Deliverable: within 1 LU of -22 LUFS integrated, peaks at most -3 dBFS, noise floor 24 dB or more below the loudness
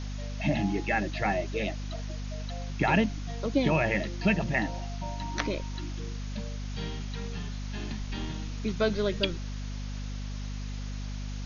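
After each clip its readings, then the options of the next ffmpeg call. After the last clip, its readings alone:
hum 50 Hz; highest harmonic 250 Hz; hum level -33 dBFS; noise floor -35 dBFS; noise floor target -56 dBFS; loudness -31.5 LUFS; peak level -11.0 dBFS; loudness target -22.0 LUFS
-> -af "bandreject=f=50:t=h:w=4,bandreject=f=100:t=h:w=4,bandreject=f=150:t=h:w=4,bandreject=f=200:t=h:w=4,bandreject=f=250:t=h:w=4"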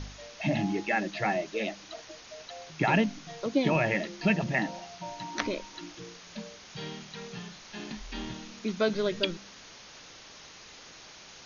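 hum not found; noise floor -50 dBFS; noise floor target -55 dBFS
-> -af "afftdn=nr=6:nf=-50"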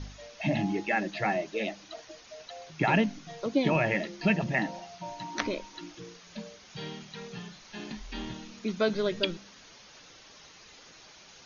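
noise floor -53 dBFS; noise floor target -55 dBFS
-> -af "afftdn=nr=6:nf=-53"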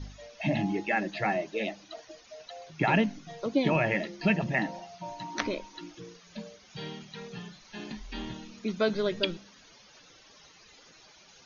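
noise floor -56 dBFS; loudness -30.5 LUFS; peak level -10.0 dBFS; loudness target -22.0 LUFS
-> -af "volume=2.66,alimiter=limit=0.708:level=0:latency=1"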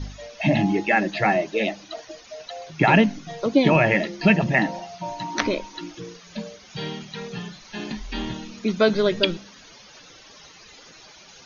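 loudness -22.0 LUFS; peak level -3.0 dBFS; noise floor -48 dBFS

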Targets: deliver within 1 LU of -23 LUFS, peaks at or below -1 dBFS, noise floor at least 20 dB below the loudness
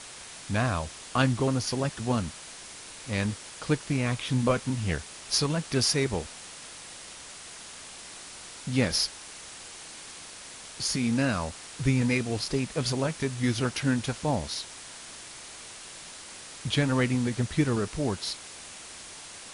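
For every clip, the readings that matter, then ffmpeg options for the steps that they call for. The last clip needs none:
noise floor -45 dBFS; noise floor target -49 dBFS; loudness -28.5 LUFS; peak level -11.0 dBFS; loudness target -23.0 LUFS
-> -af "afftdn=nr=6:nf=-45"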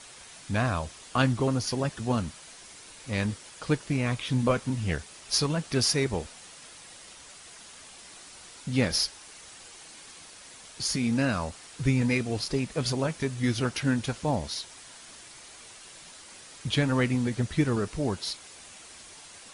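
noise floor -49 dBFS; loudness -28.5 LUFS; peak level -11.0 dBFS; loudness target -23.0 LUFS
-> -af "volume=1.88"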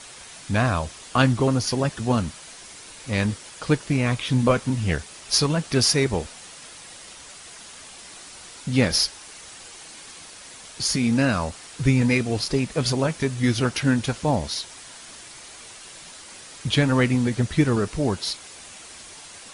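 loudness -23.0 LUFS; peak level -5.5 dBFS; noise floor -43 dBFS

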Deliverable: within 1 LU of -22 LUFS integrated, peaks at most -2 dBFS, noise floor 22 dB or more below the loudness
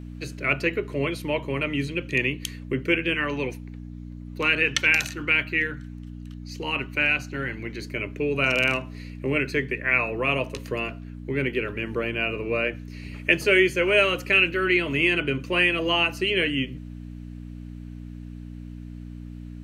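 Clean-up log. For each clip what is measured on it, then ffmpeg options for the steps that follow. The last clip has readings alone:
hum 60 Hz; highest harmonic 300 Hz; hum level -36 dBFS; loudness -23.5 LUFS; peak level -4.0 dBFS; loudness target -22.0 LUFS
-> -af "bandreject=f=60:t=h:w=4,bandreject=f=120:t=h:w=4,bandreject=f=180:t=h:w=4,bandreject=f=240:t=h:w=4,bandreject=f=300:t=h:w=4"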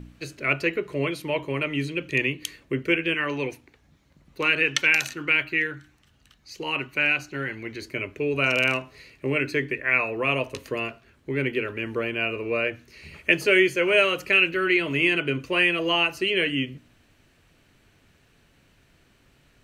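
hum not found; loudness -23.5 LUFS; peak level -4.0 dBFS; loudness target -22.0 LUFS
-> -af "volume=1.19"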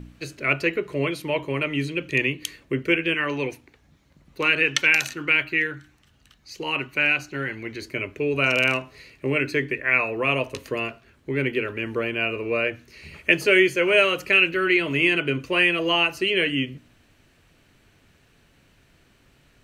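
loudness -22.0 LUFS; peak level -2.5 dBFS; noise floor -60 dBFS

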